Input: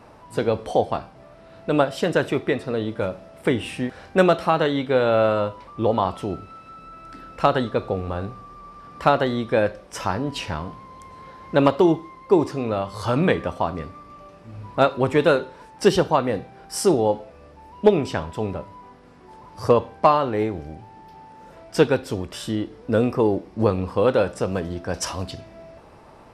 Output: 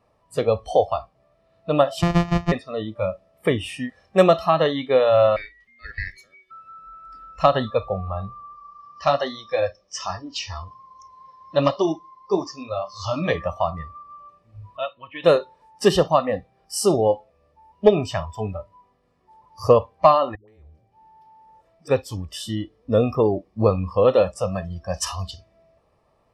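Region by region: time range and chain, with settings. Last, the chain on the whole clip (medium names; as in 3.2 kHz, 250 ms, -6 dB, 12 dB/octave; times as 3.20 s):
2.02–2.52 s: sorted samples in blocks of 256 samples + waveshaping leveller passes 1 + tape spacing loss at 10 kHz 20 dB
5.36–6.51 s: high-pass 1 kHz + ring modulator 940 Hz
8.55–13.35 s: flange 1.2 Hz, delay 1.7 ms, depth 10 ms, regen -35% + resonant low-pass 5.7 kHz, resonance Q 3.1
14.77–15.24 s: four-pole ladder low-pass 3.4 kHz, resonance 65% + comb of notches 400 Hz
20.35–21.88 s: compression 2.5:1, threshold -41 dBFS + phase dispersion highs, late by 131 ms, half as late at 380 Hz
whole clip: band-stop 1.5 kHz, Q 6; spectral noise reduction 18 dB; comb 1.7 ms, depth 36%; trim +1 dB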